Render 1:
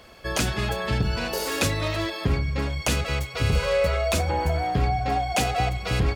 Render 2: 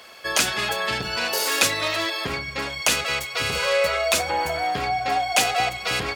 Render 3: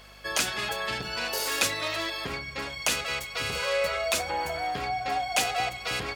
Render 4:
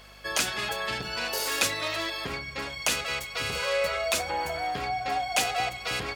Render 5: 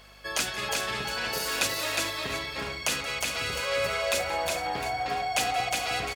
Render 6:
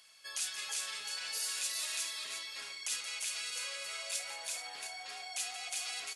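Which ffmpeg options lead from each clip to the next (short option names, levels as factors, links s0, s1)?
-af "highpass=f=1100:p=1,volume=2.37"
-af "aeval=exprs='val(0)+0.00398*(sin(2*PI*50*n/s)+sin(2*PI*2*50*n/s)/2+sin(2*PI*3*50*n/s)/3+sin(2*PI*4*50*n/s)/4+sin(2*PI*5*50*n/s)/5)':c=same,volume=0.501"
-af anull
-af "aecho=1:1:177|361|429|710:0.141|0.708|0.188|0.2,volume=0.794"
-af "alimiter=limit=0.0841:level=0:latency=1:release=38,aderivative" -ar 24000 -c:a aac -b:a 48k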